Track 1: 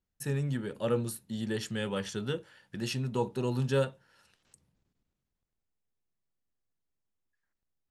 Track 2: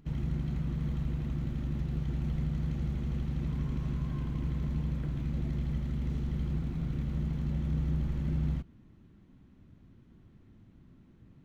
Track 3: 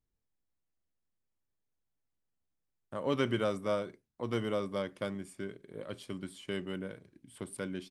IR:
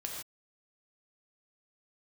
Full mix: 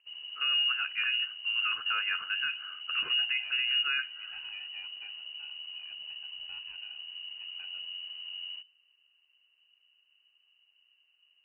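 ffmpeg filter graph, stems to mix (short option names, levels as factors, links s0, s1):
-filter_complex "[0:a]lowpass=f=1500:t=q:w=6.9,lowshelf=f=220:g=8.5,adelay=150,volume=0.891[s0];[1:a]volume=0.266[s1];[2:a]asoftclip=type=tanh:threshold=0.0398,volume=0.266[s2];[s0][s1][s2]amix=inputs=3:normalize=0,lowpass=f=2600:t=q:w=0.5098,lowpass=f=2600:t=q:w=0.6013,lowpass=f=2600:t=q:w=0.9,lowpass=f=2600:t=q:w=2.563,afreqshift=-3000,alimiter=limit=0.0891:level=0:latency=1:release=96"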